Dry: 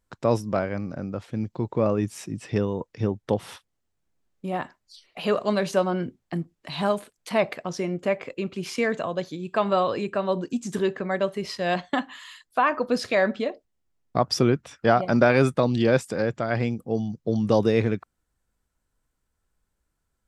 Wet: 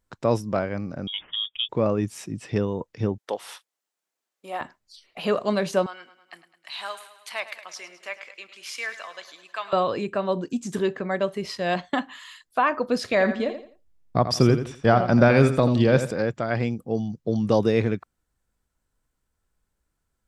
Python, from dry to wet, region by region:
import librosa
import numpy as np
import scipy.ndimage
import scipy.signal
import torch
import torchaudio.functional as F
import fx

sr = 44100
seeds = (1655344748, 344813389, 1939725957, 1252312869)

y = fx.chain(x, sr, fx.highpass(hz=120.0, slope=12),
    fx.freq_invert(carrier_hz=3500), at=(1.07, 1.69))
y = fx.chain(y, sr, fx.highpass(hz=570.0, slope=12),
    fx.high_shelf(hz=4700.0, db=4.0), at=(3.18, 4.61))
y = fx.chain(y, sr, fx.highpass(hz=1400.0, slope=12),
    fx.echo_feedback(ms=105, feedback_pct=58, wet_db=-14.0), at=(5.86, 9.73))
y = fx.chain(y, sr, fx.low_shelf(hz=110.0, db=12.0),
    fx.echo_feedback(ms=85, feedback_pct=30, wet_db=-10.0), at=(13.11, 16.11))